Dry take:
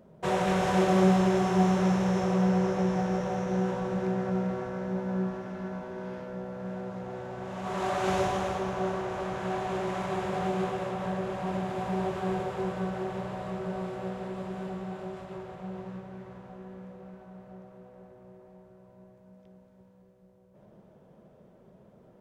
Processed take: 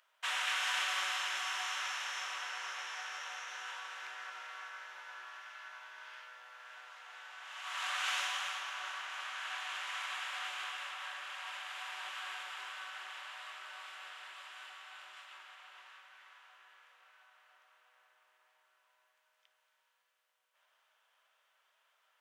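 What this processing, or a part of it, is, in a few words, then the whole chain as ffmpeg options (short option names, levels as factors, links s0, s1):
headphones lying on a table: -af "highpass=f=1300:w=0.5412,highpass=f=1300:w=1.3066,equalizer=f=3000:t=o:w=0.52:g=6.5,volume=1.12"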